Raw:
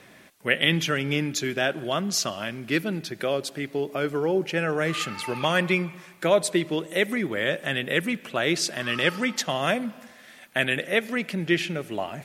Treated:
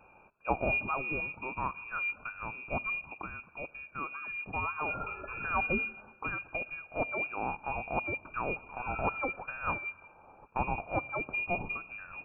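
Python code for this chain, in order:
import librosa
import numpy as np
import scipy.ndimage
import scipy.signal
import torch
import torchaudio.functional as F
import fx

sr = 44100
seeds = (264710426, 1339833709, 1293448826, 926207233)

y = scipy.signal.sosfilt(scipy.signal.ellip(3, 1.0, 60, [220.0, 1200.0], 'bandstop', fs=sr, output='sos'), x)
y = fx.freq_invert(y, sr, carrier_hz=2600)
y = y * 10.0 ** (-4.5 / 20.0)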